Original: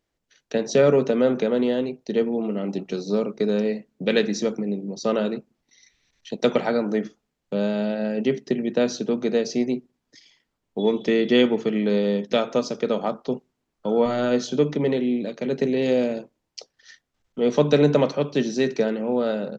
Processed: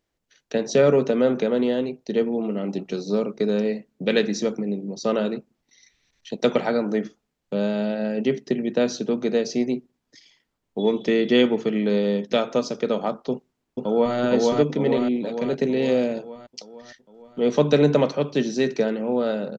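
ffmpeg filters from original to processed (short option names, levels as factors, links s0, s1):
-filter_complex "[0:a]asplit=2[s0][s1];[s1]afade=t=in:st=13.31:d=0.01,afade=t=out:st=14.16:d=0.01,aecho=0:1:460|920|1380|1840|2300|2760|3220|3680|4140:0.891251|0.534751|0.32085|0.19251|0.115506|0.0693037|0.0415822|0.0249493|0.0149696[s2];[s0][s2]amix=inputs=2:normalize=0"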